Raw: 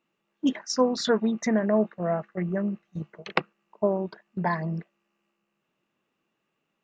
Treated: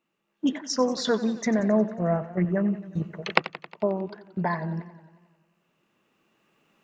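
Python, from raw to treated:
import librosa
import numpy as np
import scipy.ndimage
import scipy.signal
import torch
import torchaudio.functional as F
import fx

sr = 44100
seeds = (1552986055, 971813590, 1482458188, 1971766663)

y = fx.recorder_agc(x, sr, target_db=-14.0, rise_db_per_s=6.0, max_gain_db=30)
y = fx.low_shelf(y, sr, hz=170.0, db=9.5, at=(1.59, 2.45))
y = fx.echo_warbled(y, sr, ms=90, feedback_pct=64, rate_hz=2.8, cents=100, wet_db=-15.5)
y = y * librosa.db_to_amplitude(-1.5)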